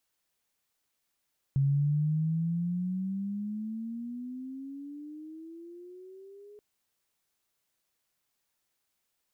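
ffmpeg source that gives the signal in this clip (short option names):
-f lavfi -i "aevalsrc='pow(10,(-22-26*t/5.03)/20)*sin(2*PI*136*5.03/(19.5*log(2)/12)*(exp(19.5*log(2)/12*t/5.03)-1))':d=5.03:s=44100"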